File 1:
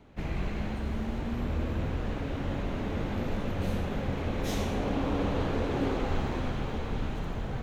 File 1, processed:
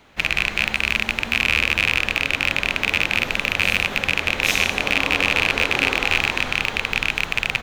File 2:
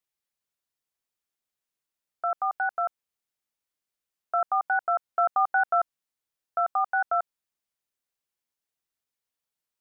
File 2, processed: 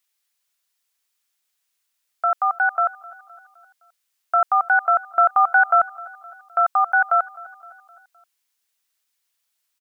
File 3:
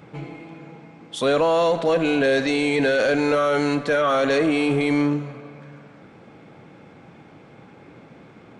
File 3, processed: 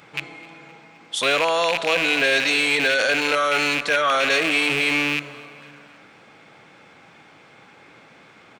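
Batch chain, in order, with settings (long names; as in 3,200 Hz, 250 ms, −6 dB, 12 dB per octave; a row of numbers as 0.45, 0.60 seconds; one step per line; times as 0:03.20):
loose part that buzzes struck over −30 dBFS, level −16 dBFS
tilt shelving filter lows −9 dB, about 730 Hz
repeating echo 258 ms, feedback 55%, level −22 dB
loudness normalisation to −19 LKFS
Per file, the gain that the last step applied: +6.0, +4.5, −1.5 decibels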